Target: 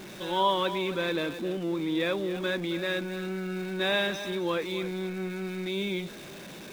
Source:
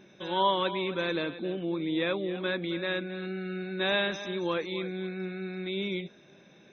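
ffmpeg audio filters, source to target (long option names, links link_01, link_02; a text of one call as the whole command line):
ffmpeg -i in.wav -af "aeval=exprs='val(0)+0.5*0.0106*sgn(val(0))':channel_layout=same" out.wav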